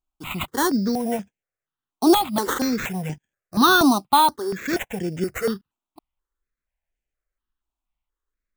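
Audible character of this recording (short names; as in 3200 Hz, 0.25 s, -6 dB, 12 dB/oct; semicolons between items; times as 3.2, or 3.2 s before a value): aliases and images of a low sample rate 5000 Hz, jitter 0%; notches that jump at a steady rate 4.2 Hz 500–4100 Hz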